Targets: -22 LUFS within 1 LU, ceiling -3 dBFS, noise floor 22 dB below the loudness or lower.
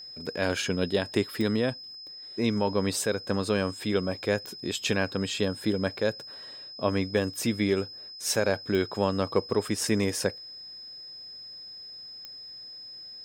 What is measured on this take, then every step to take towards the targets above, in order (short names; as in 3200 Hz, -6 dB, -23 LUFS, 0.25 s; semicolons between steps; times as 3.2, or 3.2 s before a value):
clicks 4; steady tone 5100 Hz; tone level -41 dBFS; loudness -28.5 LUFS; peak -10.5 dBFS; loudness target -22.0 LUFS
-> de-click; notch 5100 Hz, Q 30; gain +6.5 dB